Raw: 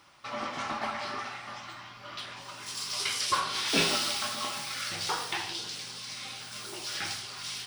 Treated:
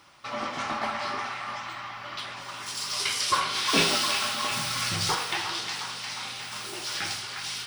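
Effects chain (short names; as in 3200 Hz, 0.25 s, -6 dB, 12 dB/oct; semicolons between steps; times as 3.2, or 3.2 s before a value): 4.51–5.15 tone controls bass +12 dB, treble +4 dB; on a send: band-limited delay 0.357 s, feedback 68%, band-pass 1600 Hz, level -6 dB; on the sum: gain +3 dB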